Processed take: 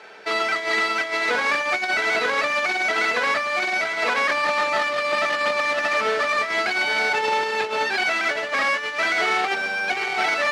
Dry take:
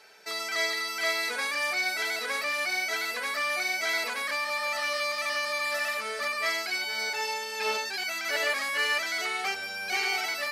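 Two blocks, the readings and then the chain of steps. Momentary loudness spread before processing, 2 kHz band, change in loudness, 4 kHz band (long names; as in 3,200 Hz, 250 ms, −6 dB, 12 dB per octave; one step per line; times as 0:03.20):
4 LU, +7.5 dB, +7.0 dB, +3.0 dB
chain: each half-wave held at its own peak
compressor whose output falls as the input rises −27 dBFS, ratio −0.5
band-pass filter 190–3,400 Hz
level +6.5 dB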